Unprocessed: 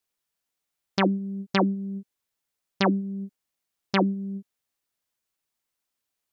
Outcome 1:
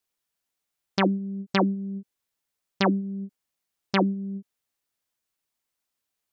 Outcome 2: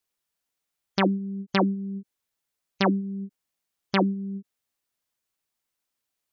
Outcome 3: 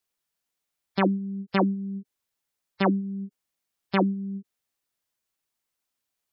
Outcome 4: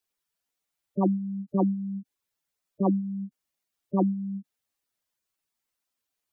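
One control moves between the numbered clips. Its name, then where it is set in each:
gate on every frequency bin, under each frame's peak: −55, −35, −20, −10 decibels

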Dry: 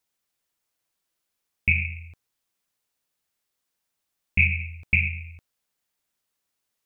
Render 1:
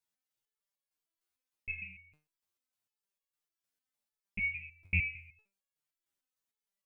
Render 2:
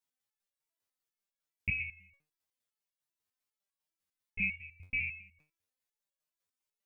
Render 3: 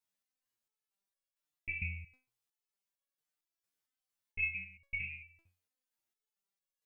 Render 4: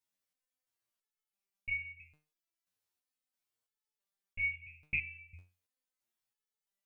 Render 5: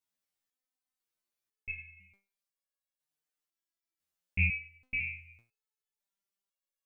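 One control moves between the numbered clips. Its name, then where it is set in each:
step-sequenced resonator, speed: 6.6, 10, 4.4, 3, 2 Hertz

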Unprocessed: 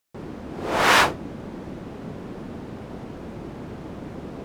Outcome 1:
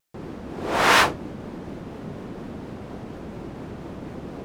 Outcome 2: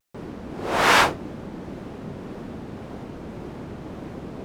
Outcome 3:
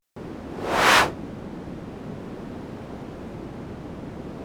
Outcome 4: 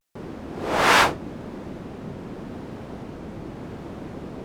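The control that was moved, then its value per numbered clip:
pitch vibrato, speed: 4.2, 1.8, 0.45, 0.83 Hertz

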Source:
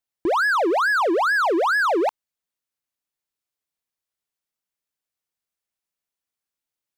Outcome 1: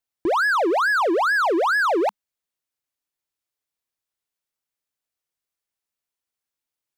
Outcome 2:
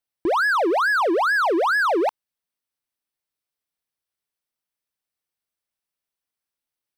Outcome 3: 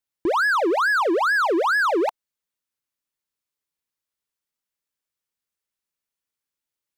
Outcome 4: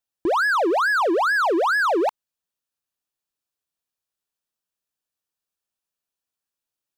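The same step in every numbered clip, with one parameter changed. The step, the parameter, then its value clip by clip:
notch filter, centre frequency: 200, 6,900, 710, 2,100 Hertz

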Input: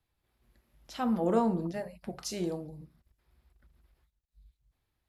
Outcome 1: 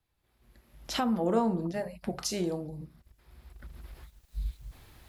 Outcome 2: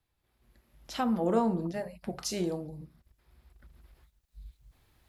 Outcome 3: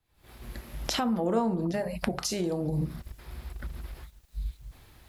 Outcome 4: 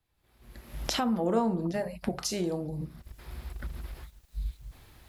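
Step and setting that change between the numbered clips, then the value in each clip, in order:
camcorder AGC, rising by: 13, 5.4, 85, 33 dB per second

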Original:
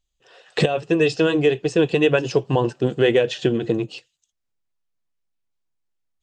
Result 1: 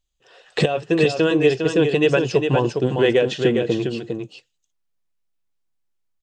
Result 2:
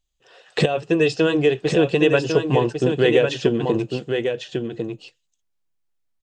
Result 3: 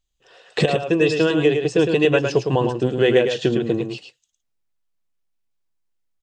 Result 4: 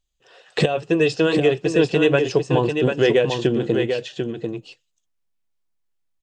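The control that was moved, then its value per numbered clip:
single-tap delay, delay time: 405, 1,100, 108, 743 milliseconds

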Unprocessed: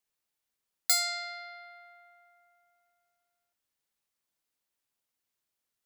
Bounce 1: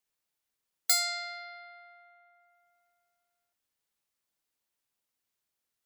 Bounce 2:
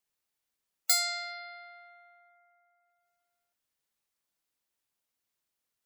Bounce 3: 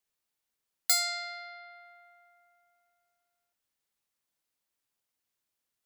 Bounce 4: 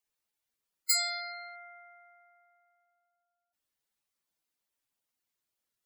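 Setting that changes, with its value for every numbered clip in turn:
gate on every frequency bin, under each frame's peak: −40, −30, −55, −10 decibels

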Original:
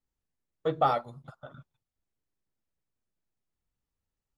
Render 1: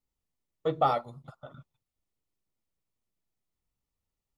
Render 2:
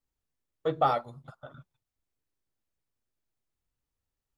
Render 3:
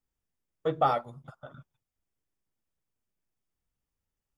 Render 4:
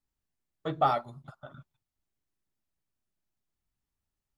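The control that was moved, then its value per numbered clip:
notch filter, centre frequency: 1,600, 190, 4,100, 490 Hertz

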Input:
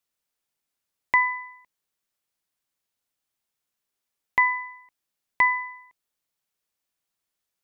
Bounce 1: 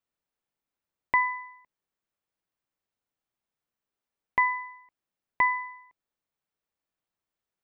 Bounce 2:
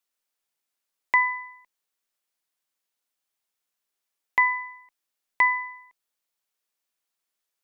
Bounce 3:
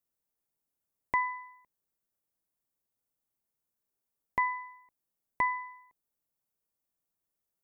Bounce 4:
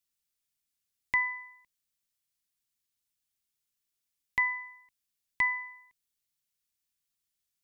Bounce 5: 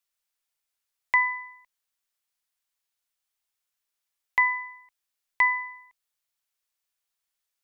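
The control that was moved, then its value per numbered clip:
parametric band, centre frequency: 13,000, 72, 3,100, 680, 200 Hertz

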